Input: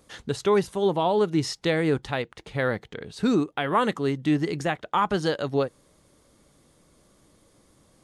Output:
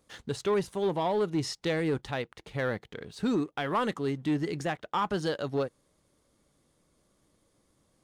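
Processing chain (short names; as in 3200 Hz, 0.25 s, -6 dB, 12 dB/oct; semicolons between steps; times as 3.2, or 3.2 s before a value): sample leveller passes 1; gain -8 dB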